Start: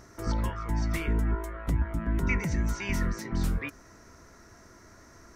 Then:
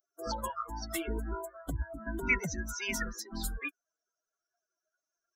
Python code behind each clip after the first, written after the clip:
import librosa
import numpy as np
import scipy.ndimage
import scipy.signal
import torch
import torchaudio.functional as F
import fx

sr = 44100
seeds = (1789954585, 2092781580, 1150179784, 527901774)

y = fx.bin_expand(x, sr, power=3.0)
y = fx.bass_treble(y, sr, bass_db=-11, treble_db=5)
y = F.gain(torch.from_numpy(y), 6.0).numpy()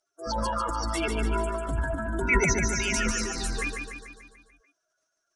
y = scipy.signal.sosfilt(scipy.signal.ellip(4, 1.0, 60, 9700.0, 'lowpass', fs=sr, output='sos'), x)
y = fx.transient(y, sr, attack_db=-6, sustain_db=10)
y = fx.echo_feedback(y, sr, ms=146, feedback_pct=56, wet_db=-5)
y = F.gain(torch.from_numpy(y), 7.5).numpy()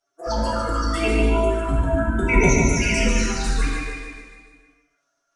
y = fx.high_shelf(x, sr, hz=6000.0, db=-10.5)
y = fx.env_flanger(y, sr, rest_ms=7.2, full_db=-23.5)
y = fx.rev_gated(y, sr, seeds[0], gate_ms=360, shape='falling', drr_db=-3.0)
y = F.gain(torch.from_numpy(y), 6.0).numpy()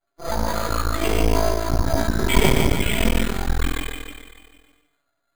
y = np.maximum(x, 0.0)
y = np.repeat(scipy.signal.resample_poly(y, 1, 8), 8)[:len(y)]
y = F.gain(torch.from_numpy(y), 3.5).numpy()